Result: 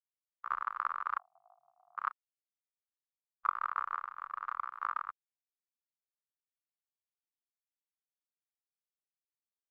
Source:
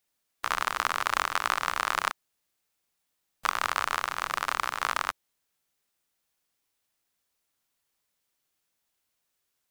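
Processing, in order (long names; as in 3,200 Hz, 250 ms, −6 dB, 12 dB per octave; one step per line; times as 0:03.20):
0:01.18–0:01.98: pair of resonant band-passes 320 Hz, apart 2.3 octaves
every bin expanded away from the loudest bin 2.5 to 1
level −7.5 dB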